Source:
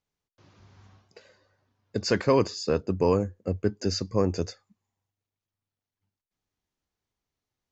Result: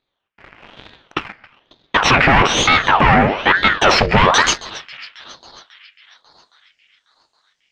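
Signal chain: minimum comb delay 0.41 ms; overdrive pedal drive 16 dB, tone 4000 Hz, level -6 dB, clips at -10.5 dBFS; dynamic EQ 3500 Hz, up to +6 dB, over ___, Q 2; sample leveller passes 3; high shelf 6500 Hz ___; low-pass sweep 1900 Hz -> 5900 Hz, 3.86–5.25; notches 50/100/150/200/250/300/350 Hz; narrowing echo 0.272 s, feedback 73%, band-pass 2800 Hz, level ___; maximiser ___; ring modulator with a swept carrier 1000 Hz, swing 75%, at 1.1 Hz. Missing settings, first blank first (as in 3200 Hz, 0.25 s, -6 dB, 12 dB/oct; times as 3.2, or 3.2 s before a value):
-46 dBFS, +6.5 dB, -19.5 dB, +13.5 dB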